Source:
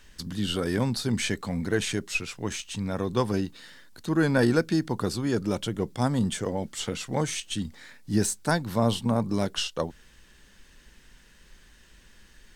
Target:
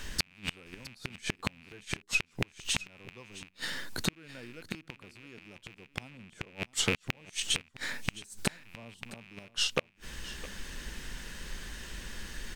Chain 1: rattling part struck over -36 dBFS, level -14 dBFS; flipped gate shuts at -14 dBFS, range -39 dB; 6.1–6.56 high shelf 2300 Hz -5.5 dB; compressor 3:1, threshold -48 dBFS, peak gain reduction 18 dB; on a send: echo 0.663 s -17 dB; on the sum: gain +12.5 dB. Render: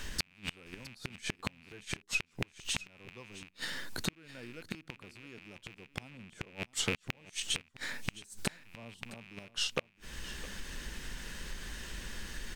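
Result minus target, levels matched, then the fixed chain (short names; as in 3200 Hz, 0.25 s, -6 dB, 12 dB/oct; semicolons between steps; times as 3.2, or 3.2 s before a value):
compressor: peak gain reduction +4 dB
rattling part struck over -36 dBFS, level -14 dBFS; flipped gate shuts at -14 dBFS, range -39 dB; 6.1–6.56 high shelf 2300 Hz -5.5 dB; compressor 3:1, threshold -42 dBFS, peak gain reduction 14 dB; on a send: echo 0.663 s -17 dB; on the sum: gain +12.5 dB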